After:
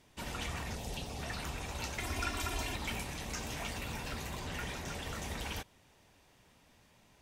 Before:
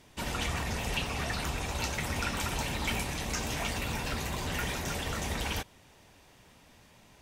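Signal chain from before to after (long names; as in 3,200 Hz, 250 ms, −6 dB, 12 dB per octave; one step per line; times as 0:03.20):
0:00.75–0:01.23: flat-topped bell 1,700 Hz −8.5 dB
0:01.98–0:02.76: comb filter 2.9 ms, depth 94%
0:04.39–0:05.03: high-shelf EQ 12,000 Hz −9 dB
level −6.5 dB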